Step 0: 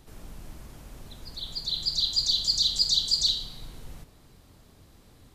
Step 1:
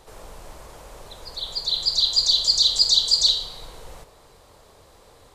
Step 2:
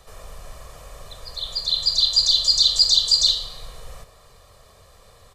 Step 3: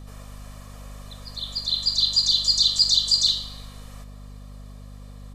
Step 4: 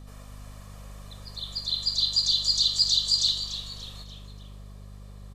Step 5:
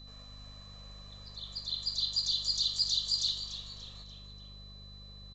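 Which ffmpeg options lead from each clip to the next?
ffmpeg -i in.wav -af "equalizer=frequency=125:width_type=o:width=1:gain=-3,equalizer=frequency=250:width_type=o:width=1:gain=-7,equalizer=frequency=500:width_type=o:width=1:gain=12,equalizer=frequency=1000:width_type=o:width=1:gain=9,equalizer=frequency=2000:width_type=o:width=1:gain=3,equalizer=frequency=4000:width_type=o:width=1:gain=4,equalizer=frequency=8000:width_type=o:width=1:gain=6" out.wav
ffmpeg -i in.wav -filter_complex "[0:a]aecho=1:1:1.7:0.61,acrossover=split=280|800|2600[link_01][link_02][link_03][link_04];[link_02]aeval=exprs='max(val(0),0)':channel_layout=same[link_05];[link_01][link_05][link_03][link_04]amix=inputs=4:normalize=0" out.wav
ffmpeg -i in.wav -filter_complex "[0:a]acrossover=split=820|3200[link_01][link_02][link_03];[link_01]alimiter=level_in=15dB:limit=-24dB:level=0:latency=1:release=81,volume=-15dB[link_04];[link_04][link_02][link_03]amix=inputs=3:normalize=0,aeval=exprs='val(0)+0.0141*(sin(2*PI*50*n/s)+sin(2*PI*2*50*n/s)/2+sin(2*PI*3*50*n/s)/3+sin(2*PI*4*50*n/s)/4+sin(2*PI*5*50*n/s)/5)':channel_layout=same,volume=-2.5dB" out.wav
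ffmpeg -i in.wav -filter_complex "[0:a]asplit=5[link_01][link_02][link_03][link_04][link_05];[link_02]adelay=291,afreqshift=-150,volume=-11.5dB[link_06];[link_03]adelay=582,afreqshift=-300,volume=-18.6dB[link_07];[link_04]adelay=873,afreqshift=-450,volume=-25.8dB[link_08];[link_05]adelay=1164,afreqshift=-600,volume=-32.9dB[link_09];[link_01][link_06][link_07][link_08][link_09]amix=inputs=5:normalize=0,volume=-4dB" out.wav
ffmpeg -i in.wav -af "aeval=exprs='val(0)+0.00631*sin(2*PI*4000*n/s)':channel_layout=same,aresample=16000,aresample=44100,volume=-7.5dB" out.wav

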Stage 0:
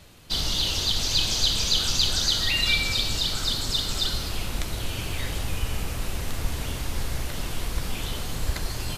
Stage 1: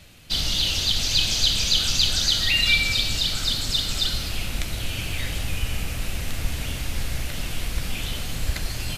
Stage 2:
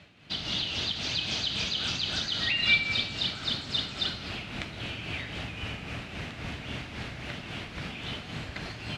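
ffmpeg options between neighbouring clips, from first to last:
ffmpeg -i in.wav -af "equalizer=frequency=400:width_type=o:width=0.67:gain=-5,equalizer=frequency=1000:width_type=o:width=0.67:gain=-6,equalizer=frequency=2500:width_type=o:width=0.67:gain=4,volume=1.5dB" out.wav
ffmpeg -i in.wav -af "tremolo=f=3.7:d=0.49,highpass=130,lowpass=3000,bandreject=frequency=520:width=12" out.wav

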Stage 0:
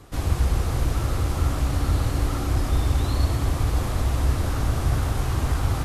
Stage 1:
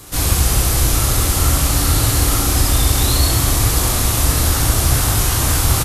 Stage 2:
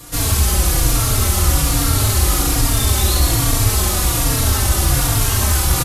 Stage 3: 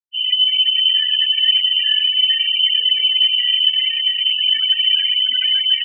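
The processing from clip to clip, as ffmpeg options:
ffmpeg -i in.wav -filter_complex "[0:a]crystalizer=i=5:c=0,asplit=2[link_01][link_02];[link_02]aecho=0:1:27|67:0.596|0.668[link_03];[link_01][link_03]amix=inputs=2:normalize=0,volume=4dB" out.wav
ffmpeg -i in.wav -filter_complex "[0:a]asplit=2[link_01][link_02];[link_02]asoftclip=type=tanh:threshold=-14dB,volume=-6dB[link_03];[link_01][link_03]amix=inputs=2:normalize=0,asplit=2[link_04][link_05];[link_05]adelay=3.7,afreqshift=-1.2[link_06];[link_04][link_06]amix=inputs=2:normalize=1" out.wav
ffmpeg -i in.wav -af "afftfilt=real='re*gte(hypot(re,im),0.224)':imag='im*gte(hypot(re,im),0.224)':win_size=1024:overlap=0.75,lowpass=frequency=2600:width_type=q:width=0.5098,lowpass=frequency=2600:width_type=q:width=0.6013,lowpass=frequency=2600:width_type=q:width=0.9,lowpass=frequency=2600:width_type=q:width=2.563,afreqshift=-3100" out.wav

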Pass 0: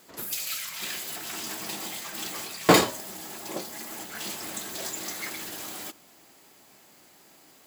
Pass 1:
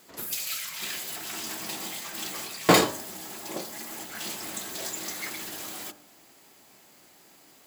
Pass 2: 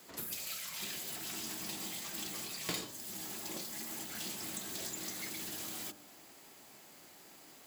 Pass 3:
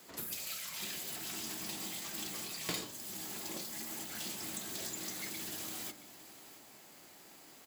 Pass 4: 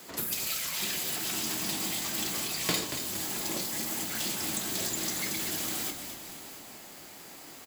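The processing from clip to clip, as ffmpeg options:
ffmpeg -i in.wav -af "bandreject=frequency=49.59:width_type=h:width=4,bandreject=frequency=99.18:width_type=h:width=4,bandreject=frequency=148.77:width_type=h:width=4,bandreject=frequency=198.36:width_type=h:width=4,bandreject=frequency=247.95:width_type=h:width=4,bandreject=frequency=297.54:width_type=h:width=4,bandreject=frequency=347.13:width_type=h:width=4,bandreject=frequency=396.72:width_type=h:width=4,bandreject=frequency=446.31:width_type=h:width=4,bandreject=frequency=495.9:width_type=h:width=4,bandreject=frequency=545.49:width_type=h:width=4,bandreject=frequency=595.08:width_type=h:width=4,bandreject=frequency=644.67:width_type=h:width=4,bandreject=frequency=694.26:width_type=h:width=4,bandreject=frequency=743.85:width_type=h:width=4,bandreject=frequency=793.44:width_type=h:width=4,bandreject=frequency=843.03:width_type=h:width=4,bandreject=frequency=892.62:width_type=h:width=4,bandreject=frequency=942.21:width_type=h:width=4,bandreject=frequency=991.8:width_type=h:width=4,bandreject=frequency=1041.39:width_type=h:width=4,bandreject=frequency=1090.98:width_type=h:width=4,bandreject=frequency=1140.57:width_type=h:width=4,bandreject=frequency=1190.16:width_type=h:width=4,bandreject=frequency=1239.75:width_type=h:width=4,bandreject=frequency=1289.34:width_type=h:width=4,bandreject=frequency=1338.93:width_type=h:width=4,bandreject=frequency=1388.52:width_type=h:width=4,bandreject=frequency=1438.11:width_type=h:width=4,bandreject=frequency=1487.7:width_type=h:width=4,bandreject=frequency=1537.29:width_type=h:width=4,bandreject=frequency=1586.88:width_type=h:width=4,bandreject=frequency=1636.47:width_type=h:width=4,bandreject=frequency=1686.06:width_type=h:width=4,bandreject=frequency=1735.65:width_type=h:width=4,bandreject=frequency=1785.24:width_type=h:width=4" out.wav
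ffmpeg -i in.wav -filter_complex "[0:a]acrossover=split=310|960|2500[link_01][link_02][link_03][link_04];[link_01]acompressor=threshold=-46dB:ratio=4[link_05];[link_02]acompressor=threshold=-55dB:ratio=4[link_06];[link_03]acompressor=threshold=-55dB:ratio=4[link_07];[link_04]acompressor=threshold=-39dB:ratio=4[link_08];[link_05][link_06][link_07][link_08]amix=inputs=4:normalize=0,volume=-1dB" out.wav
ffmpeg -i in.wav -af "aecho=1:1:672:0.158" out.wav
ffmpeg -i in.wav -filter_complex "[0:a]asplit=7[link_01][link_02][link_03][link_04][link_05][link_06][link_07];[link_02]adelay=232,afreqshift=-37,volume=-9dB[link_08];[link_03]adelay=464,afreqshift=-74,volume=-15.2dB[link_09];[link_04]adelay=696,afreqshift=-111,volume=-21.4dB[link_10];[link_05]adelay=928,afreqshift=-148,volume=-27.6dB[link_11];[link_06]adelay=1160,afreqshift=-185,volume=-33.8dB[link_12];[link_07]adelay=1392,afreqshift=-222,volume=-40dB[link_13];[link_01][link_08][link_09][link_10][link_11][link_12][link_13]amix=inputs=7:normalize=0,volume=8.5dB" out.wav

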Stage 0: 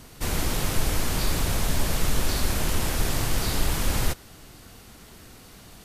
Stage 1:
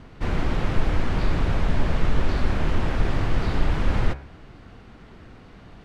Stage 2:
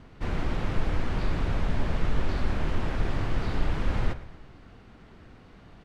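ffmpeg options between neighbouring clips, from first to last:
ffmpeg -i in.wav -af "lowpass=2000,equalizer=frequency=830:width_type=o:width=2.2:gain=-2,bandreject=frequency=69.45:width_type=h:width=4,bandreject=frequency=138.9:width_type=h:width=4,bandreject=frequency=208.35:width_type=h:width=4,bandreject=frequency=277.8:width_type=h:width=4,bandreject=frequency=347.25:width_type=h:width=4,bandreject=frequency=416.7:width_type=h:width=4,bandreject=frequency=486.15:width_type=h:width=4,bandreject=frequency=555.6:width_type=h:width=4,bandreject=frequency=625.05:width_type=h:width=4,bandreject=frequency=694.5:width_type=h:width=4,bandreject=frequency=763.95:width_type=h:width=4,bandreject=frequency=833.4:width_type=h:width=4,bandreject=frequency=902.85:width_type=h:width=4,bandreject=frequency=972.3:width_type=h:width=4,bandreject=frequency=1041.75:width_type=h:width=4,bandreject=frequency=1111.2:width_type=h:width=4,bandreject=frequency=1180.65:width_type=h:width=4,bandreject=frequency=1250.1:width_type=h:width=4,bandreject=frequency=1319.55:width_type=h:width=4,bandreject=frequency=1389:width_type=h:width=4,bandreject=frequency=1458.45:width_type=h:width=4,bandreject=frequency=1527.9:width_type=h:width=4,bandreject=frequency=1597.35:width_type=h:width=4,bandreject=frequency=1666.8:width_type=h:width=4,bandreject=frequency=1736.25:width_type=h:width=4,bandreject=frequency=1805.7:width_type=h:width=4,bandreject=frequency=1875.15:width_type=h:width=4,bandreject=frequency=1944.6:width_type=h:width=4,bandreject=frequency=2014.05:width_type=h:width=4,bandreject=frequency=2083.5:width_type=h:width=4,bandreject=frequency=2152.95:width_type=h:width=4,bandreject=frequency=2222.4:width_type=h:width=4,bandreject=frequency=2291.85:width_type=h:width=4,bandreject=frequency=2361.3:width_type=h:width=4,bandreject=frequency=2430.75:width_type=h:width=4,bandreject=frequency=2500.2:width_type=h:width=4,bandreject=frequency=2569.65:width_type=h:width=4,bandreject=frequency=2639.1:width_type=h:width=4,bandreject=frequency=2708.55:width_type=h:width=4,volume=4dB" out.wav
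ffmpeg -i in.wav -af "aecho=1:1:114|228|342|456|570:0.126|0.068|0.0367|0.0198|0.0107,volume=-5dB" out.wav

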